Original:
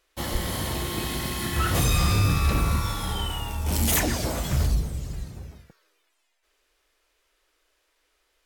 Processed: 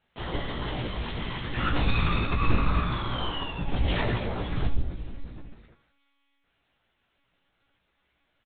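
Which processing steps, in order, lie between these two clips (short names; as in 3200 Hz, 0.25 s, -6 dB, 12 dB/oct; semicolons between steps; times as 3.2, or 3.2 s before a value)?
chorus 0.63 Hz, delay 20 ms, depth 5.6 ms; monotone LPC vocoder at 8 kHz 280 Hz; 2.36–3.46 doubler 47 ms -4 dB; on a send: early reflections 17 ms -5.5 dB, 79 ms -13.5 dB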